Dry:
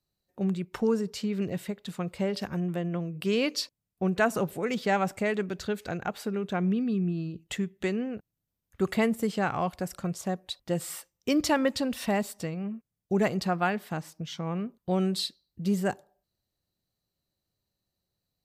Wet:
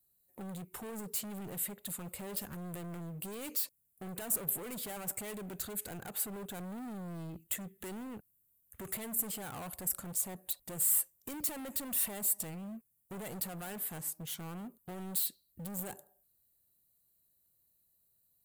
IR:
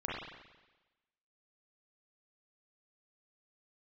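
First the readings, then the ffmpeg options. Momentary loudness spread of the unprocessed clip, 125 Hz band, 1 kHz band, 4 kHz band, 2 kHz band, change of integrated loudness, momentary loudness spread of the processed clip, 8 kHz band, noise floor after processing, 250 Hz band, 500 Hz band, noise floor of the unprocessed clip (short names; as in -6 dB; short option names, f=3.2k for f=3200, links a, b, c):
9 LU, -13.0 dB, -15.5 dB, -10.5 dB, -15.5 dB, -6.5 dB, 13 LU, +6.5 dB, -74 dBFS, -15.0 dB, -17.0 dB, -85 dBFS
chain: -af "alimiter=limit=-24dB:level=0:latency=1:release=59,asoftclip=type=hard:threshold=-38dB,aexciter=amount=5.9:drive=8.6:freq=7.8k,volume=-3.5dB"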